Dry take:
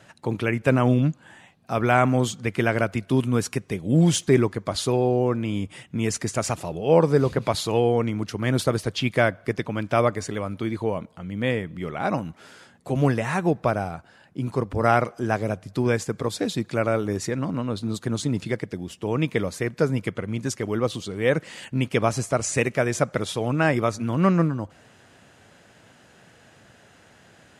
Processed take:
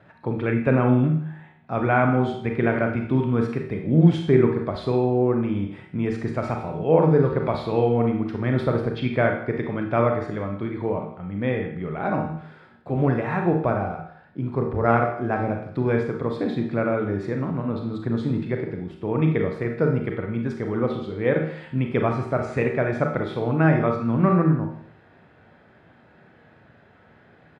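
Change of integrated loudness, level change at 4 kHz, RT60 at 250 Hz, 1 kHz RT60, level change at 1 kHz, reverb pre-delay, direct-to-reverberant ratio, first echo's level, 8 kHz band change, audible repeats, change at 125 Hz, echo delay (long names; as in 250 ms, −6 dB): +1.0 dB, −10.0 dB, 0.60 s, 0.60 s, 0.0 dB, 31 ms, 2.0 dB, −17.5 dB, below −25 dB, 1, +1.5 dB, 161 ms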